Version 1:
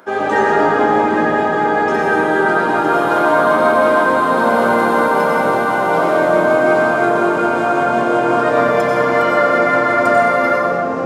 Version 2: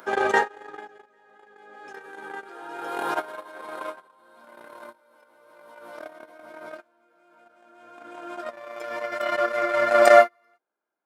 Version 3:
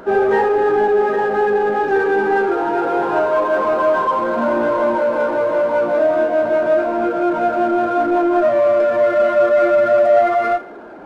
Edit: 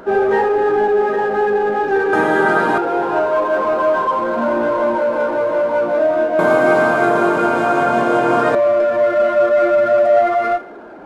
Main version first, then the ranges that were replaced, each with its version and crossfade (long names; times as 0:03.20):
3
0:02.13–0:02.78: punch in from 1
0:06.39–0:08.55: punch in from 1
not used: 2